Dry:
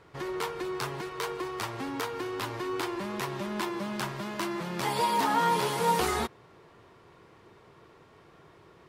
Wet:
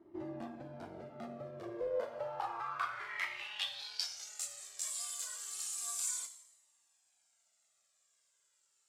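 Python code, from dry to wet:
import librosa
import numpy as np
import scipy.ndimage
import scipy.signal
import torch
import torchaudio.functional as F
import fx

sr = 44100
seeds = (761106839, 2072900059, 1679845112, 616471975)

p1 = fx.high_shelf(x, sr, hz=4300.0, db=10.5)
p2 = fx.rider(p1, sr, range_db=10, speed_s=0.5)
p3 = p1 + (p2 * librosa.db_to_amplitude(1.5))
p4 = fx.rev_double_slope(p3, sr, seeds[0], early_s=0.81, late_s=3.2, knee_db=-27, drr_db=7.5)
p5 = p4 * np.sin(2.0 * np.pi * 230.0 * np.arange(len(p4)) / sr)
p6 = fx.filter_sweep_bandpass(p5, sr, from_hz=330.0, to_hz=7500.0, start_s=1.6, end_s=4.39, q=5.4)
p7 = fx.comb_cascade(p6, sr, direction='falling', hz=0.31)
y = p7 * librosa.db_to_amplitude(3.5)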